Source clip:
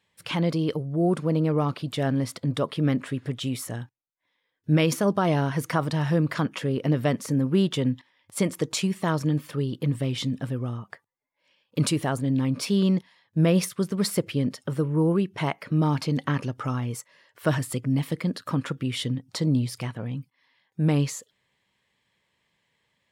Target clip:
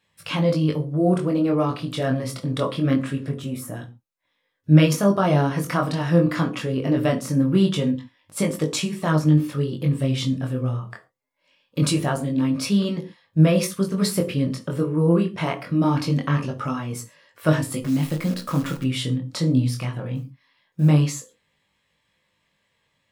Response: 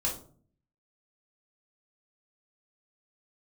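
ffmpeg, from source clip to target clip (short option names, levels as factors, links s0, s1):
-filter_complex "[0:a]asettb=1/sr,asplit=3[s0][s1][s2];[s0]atrim=end=3.294[s3];[s1]atrim=start=3.29:end=3.76,asetpts=PTS-STARTPTS,afade=t=in:d=0.004:c=qsin,afade=t=out:st=0.466:d=0.004:c=qsin,equalizer=f=4000:t=o:w=2:g=-11.5[s4];[s2]atrim=start=3.756[s5];[s3][s4]acrossfade=d=0.004:c1=hsin:c2=qsin[s6];[s6][s5]acrossfade=d=0.004:c1=qsin:c2=hsin,asettb=1/sr,asplit=3[s7][s8][s9];[s7]atrim=end=20.154[s10];[s8]atrim=start=20.15:end=20.89,asetpts=PTS-STARTPTS,afade=t=in:d=0.004:c=qsin,afade=t=out:st=0.736:d=0.004:c=qsin,acrusher=bits=9:mode=log:mix=0:aa=0.000001[s11];[s9]atrim=start=20.886[s12];[s10][s11]acrossfade=d=0.004:c1=hsin:c2=qsin[s13];[s13][s12]acrossfade=d=0.004:c1=qsin:c2=hsin,flanger=delay=19:depth=4.6:speed=0.23,asettb=1/sr,asplit=3[s14][s15][s16];[s14]atrim=end=17.824[s17];[s15]atrim=start=17.82:end=18.84,asetpts=PTS-STARTPTS,afade=t=in:d=0.004:c=qsin,afade=t=out:st=1.016:d=0.004:c=qsin,acrusher=bits=8:dc=4:mix=0:aa=0.000001[s18];[s16]atrim=start=18.836[s19];[s17][s18]acrossfade=d=0.004:c1=hsin:c2=qsin[s20];[s20][s19]acrossfade=d=0.004:c1=qsin:c2=hsin,asplit=2[s21][s22];[1:a]atrim=start_sample=2205,atrim=end_sample=6174[s23];[s22][s23]afir=irnorm=-1:irlink=0,volume=0.316[s24];[s21][s24]amix=inputs=2:normalize=0,volume=1.5"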